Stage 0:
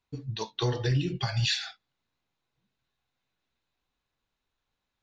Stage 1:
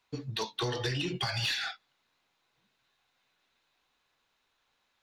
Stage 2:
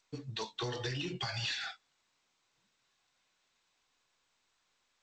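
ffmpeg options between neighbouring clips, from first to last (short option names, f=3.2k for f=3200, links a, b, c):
-filter_complex "[0:a]acrossover=split=330|2300[a][b][c];[a]acompressor=threshold=-32dB:ratio=4[d];[b]acompressor=threshold=-41dB:ratio=4[e];[c]acompressor=threshold=-41dB:ratio=4[f];[d][e][f]amix=inputs=3:normalize=0,asplit=2[g][h];[h]highpass=f=720:p=1,volume=16dB,asoftclip=type=tanh:threshold=-22dB[i];[g][i]amix=inputs=2:normalize=0,lowpass=f=5.9k:p=1,volume=-6dB"
-af "volume=-5dB" -ar 16000 -c:a g722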